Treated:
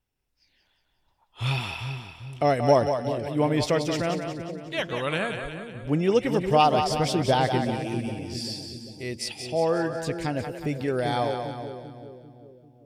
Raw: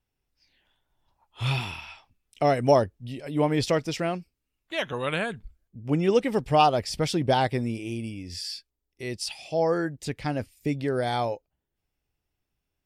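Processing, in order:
echo with a time of its own for lows and highs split 500 Hz, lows 394 ms, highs 181 ms, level −6.5 dB

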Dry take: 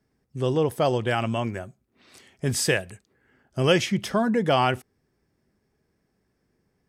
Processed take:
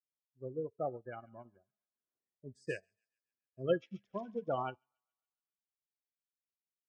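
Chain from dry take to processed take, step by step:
adaptive Wiener filter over 15 samples
low-pass filter 8,600 Hz
hum removal 219.8 Hz, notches 33
pitch vibrato 5 Hz 39 cents
gate on every frequency bin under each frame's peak −15 dB strong
bass and treble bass −5 dB, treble −6 dB
tuned comb filter 66 Hz, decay 0.64 s, harmonics all, mix 40%
delay with a high-pass on its return 138 ms, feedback 57%, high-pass 1,600 Hz, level −12.5 dB
expander for the loud parts 2.5 to 1, over −44 dBFS
level −3.5 dB

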